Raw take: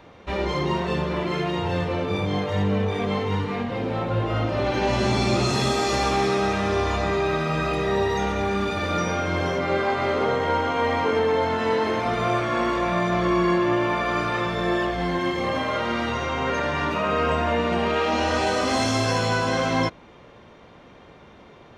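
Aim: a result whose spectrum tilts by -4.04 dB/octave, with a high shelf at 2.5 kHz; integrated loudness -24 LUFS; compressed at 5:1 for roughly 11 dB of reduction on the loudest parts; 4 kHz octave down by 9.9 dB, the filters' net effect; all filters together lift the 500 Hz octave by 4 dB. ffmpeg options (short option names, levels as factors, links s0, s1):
-af "equalizer=f=500:t=o:g=5.5,highshelf=f=2500:g=-6.5,equalizer=f=4000:t=o:g=-7.5,acompressor=threshold=0.0398:ratio=5,volume=2.24"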